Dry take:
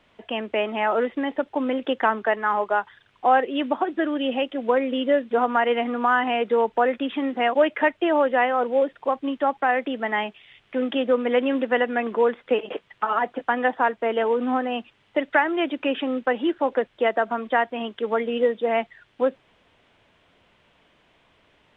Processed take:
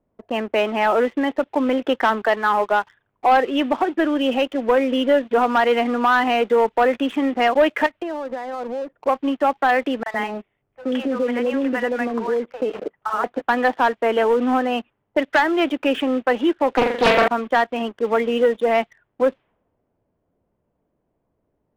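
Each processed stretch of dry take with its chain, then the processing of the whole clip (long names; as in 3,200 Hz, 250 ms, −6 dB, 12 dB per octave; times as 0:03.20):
0:07.86–0:08.95: high-frequency loss of the air 200 metres + notch filter 420 Hz, Q 6.2 + downward compressor 20 to 1, threshold −28 dBFS
0:10.03–0:13.24: downward compressor 2.5 to 1, threshold −22 dBFS + three-band delay without the direct sound highs, mids, lows 30/110 ms, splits 690/3,300 Hz
0:16.74–0:17.28: high-shelf EQ 2,100 Hz +11.5 dB + flutter between parallel walls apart 7.2 metres, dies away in 0.65 s + highs frequency-modulated by the lows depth 0.61 ms
whole clip: low-pass that shuts in the quiet parts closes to 530 Hz, open at −17.5 dBFS; leveller curve on the samples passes 2; level −2.5 dB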